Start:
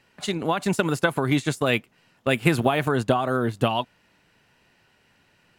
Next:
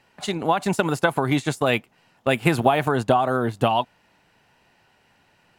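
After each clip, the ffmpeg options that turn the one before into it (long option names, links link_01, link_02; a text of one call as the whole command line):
ffmpeg -i in.wav -af "equalizer=frequency=800:width_type=o:width=0.73:gain=6.5" out.wav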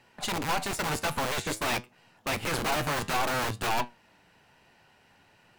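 ffmpeg -i in.wav -filter_complex "[0:a]aeval=exprs='(tanh(25.1*val(0)+0.65)-tanh(0.65))/25.1':channel_layout=same,acrossover=split=680[link_01][link_02];[link_01]aeval=exprs='(mod(26.6*val(0)+1,2)-1)/26.6':channel_layout=same[link_03];[link_03][link_02]amix=inputs=2:normalize=0,flanger=delay=8.1:depth=5.1:regen=78:speed=0.53:shape=sinusoidal,volume=7.5dB" out.wav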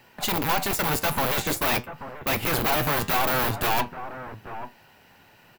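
ffmpeg -i in.wav -filter_complex "[0:a]acrossover=split=2100[link_01][link_02];[link_01]aecho=1:1:835:0.224[link_03];[link_02]aexciter=amount=4.1:drive=5.6:freq=12000[link_04];[link_03][link_04]amix=inputs=2:normalize=0,asoftclip=type=tanh:threshold=-21.5dB,volume=6dB" out.wav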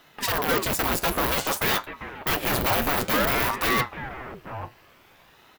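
ffmpeg -i in.wav -af "aeval=exprs='val(0)*sin(2*PI*620*n/s+620*0.85/0.54*sin(2*PI*0.54*n/s))':channel_layout=same,volume=3dB" out.wav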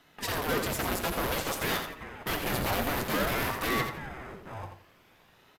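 ffmpeg -i in.wav -filter_complex "[0:a]asplit=2[link_01][link_02];[link_02]acrusher=samples=31:mix=1:aa=0.000001,volume=-10dB[link_03];[link_01][link_03]amix=inputs=2:normalize=0,aecho=1:1:85|170|255:0.447|0.116|0.0302,aresample=32000,aresample=44100,volume=-7dB" out.wav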